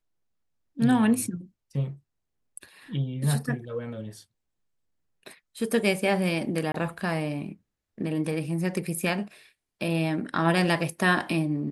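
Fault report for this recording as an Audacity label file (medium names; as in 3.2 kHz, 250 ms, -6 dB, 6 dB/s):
6.720000	6.740000	dropout 23 ms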